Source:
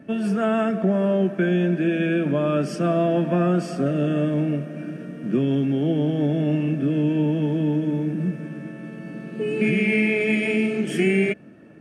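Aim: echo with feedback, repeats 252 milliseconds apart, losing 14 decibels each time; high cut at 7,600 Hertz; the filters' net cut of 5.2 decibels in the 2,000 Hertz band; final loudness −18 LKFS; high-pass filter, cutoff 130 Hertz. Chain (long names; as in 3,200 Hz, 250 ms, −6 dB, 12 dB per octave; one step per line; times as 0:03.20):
high-pass filter 130 Hz
low-pass filter 7,600 Hz
parametric band 2,000 Hz −6.5 dB
repeating echo 252 ms, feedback 20%, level −14 dB
level +5 dB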